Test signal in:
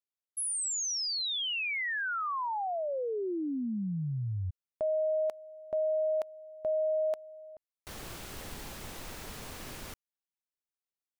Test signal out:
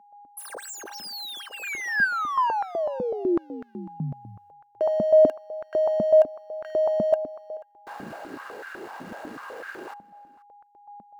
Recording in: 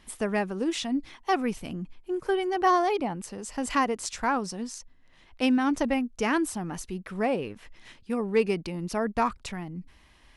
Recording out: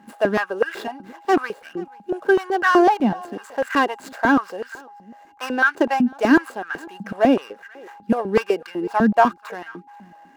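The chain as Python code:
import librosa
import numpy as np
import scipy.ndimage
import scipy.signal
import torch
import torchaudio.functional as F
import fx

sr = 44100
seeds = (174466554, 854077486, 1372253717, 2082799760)

p1 = scipy.signal.medfilt(x, 15)
p2 = fx.small_body(p1, sr, hz=(1600.0, 2800.0), ring_ms=45, db=14)
p3 = p2 + 10.0 ** (-57.0 / 20.0) * np.sin(2.0 * np.pi * 820.0 * np.arange(len(p2)) / sr)
p4 = p3 + fx.echo_single(p3, sr, ms=483, db=-23.5, dry=0)
p5 = fx.filter_held_highpass(p4, sr, hz=8.0, low_hz=210.0, high_hz=1500.0)
y = p5 * 10.0 ** (4.5 / 20.0)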